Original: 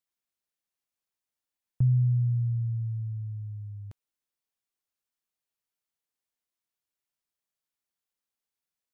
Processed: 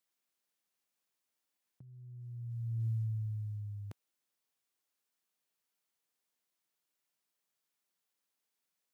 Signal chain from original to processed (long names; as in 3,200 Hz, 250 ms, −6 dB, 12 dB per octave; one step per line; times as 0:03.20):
high-pass filter 140 Hz 12 dB per octave
compressor whose output falls as the input rises −36 dBFS, ratio −0.5
floating-point word with a short mantissa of 6 bits
level −1.5 dB